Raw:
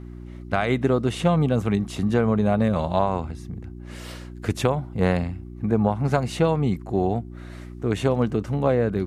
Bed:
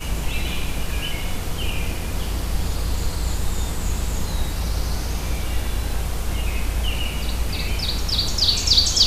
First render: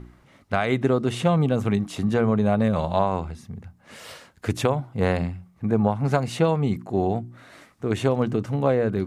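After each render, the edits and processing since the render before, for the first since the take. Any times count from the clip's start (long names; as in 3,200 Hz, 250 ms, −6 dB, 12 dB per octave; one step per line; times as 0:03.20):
hum removal 60 Hz, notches 6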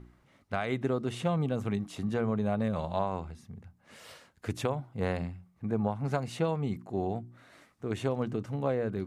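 level −9 dB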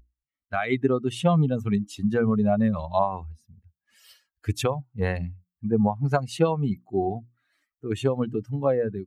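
spectral dynamics exaggerated over time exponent 2
automatic gain control gain up to 11.5 dB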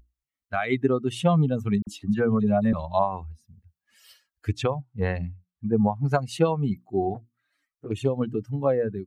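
0:01.82–0:02.73: all-pass dispersion lows, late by 49 ms, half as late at 2,500 Hz
0:04.49–0:05.73: high-frequency loss of the air 100 metres
0:07.14–0:08.21: flanger swept by the level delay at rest 8.2 ms, full sweep at −23.5 dBFS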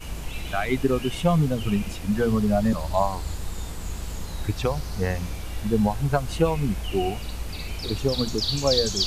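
mix in bed −8.5 dB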